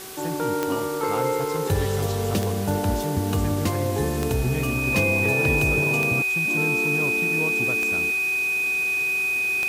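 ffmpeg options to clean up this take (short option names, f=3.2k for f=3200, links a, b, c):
-af "adeclick=t=4,bandreject=f=380.5:t=h:w=4,bandreject=f=761:t=h:w=4,bandreject=f=1.1415k:t=h:w=4,bandreject=f=1.522k:t=h:w=4,bandreject=f=2.5k:w=30,afwtdn=0.013"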